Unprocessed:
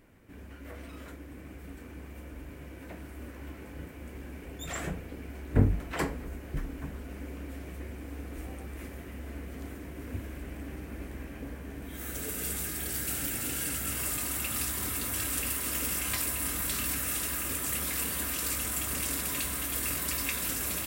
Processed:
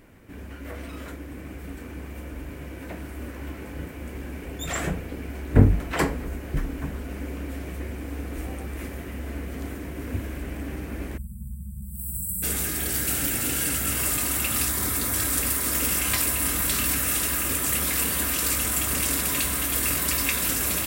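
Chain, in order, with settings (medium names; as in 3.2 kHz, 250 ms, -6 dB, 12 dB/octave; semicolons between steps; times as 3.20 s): 11.18–12.43 s: spectral selection erased 220–7500 Hz; 14.68–15.80 s: peaking EQ 2.8 kHz -6.5 dB 0.36 oct; trim +7.5 dB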